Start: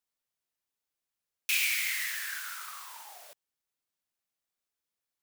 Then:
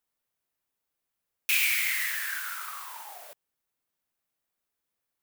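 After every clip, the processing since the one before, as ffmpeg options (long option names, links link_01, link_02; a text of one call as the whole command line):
ffmpeg -i in.wav -af "equalizer=frequency=5300:width_type=o:width=2.1:gain=-6,volume=6dB" out.wav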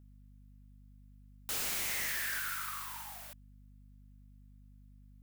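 ffmpeg -i in.wav -af "highpass=1000,aeval=exprs='0.0335*(abs(mod(val(0)/0.0335+3,4)-2)-1)':channel_layout=same,aeval=exprs='val(0)+0.00178*(sin(2*PI*50*n/s)+sin(2*PI*2*50*n/s)/2+sin(2*PI*3*50*n/s)/3+sin(2*PI*4*50*n/s)/4+sin(2*PI*5*50*n/s)/5)':channel_layout=same,volume=-1dB" out.wav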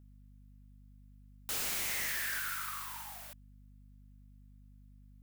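ffmpeg -i in.wav -af anull out.wav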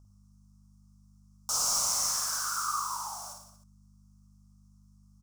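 ffmpeg -i in.wav -filter_complex "[0:a]firequalizer=gain_entry='entry(130,0);entry(390,-9);entry(580,3);entry(1200,13);entry(1800,-19);entry(3800,-5);entry(5500,15);entry(14000,-6)':delay=0.05:min_phase=1,asplit=2[link_01][link_02];[link_02]aecho=0:1:50|105|165.5|232|305.3:0.631|0.398|0.251|0.158|0.1[link_03];[link_01][link_03]amix=inputs=2:normalize=0" out.wav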